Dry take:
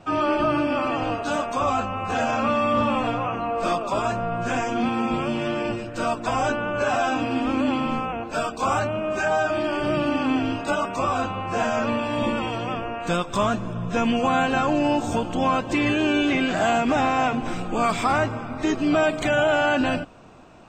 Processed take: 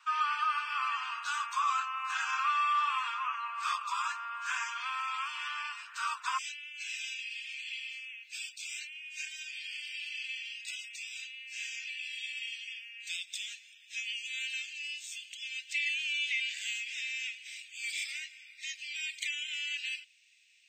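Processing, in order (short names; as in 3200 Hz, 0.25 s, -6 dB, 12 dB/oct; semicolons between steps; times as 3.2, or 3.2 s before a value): steep high-pass 1000 Hz 72 dB/oct, from 6.37 s 2000 Hz; gain -3.5 dB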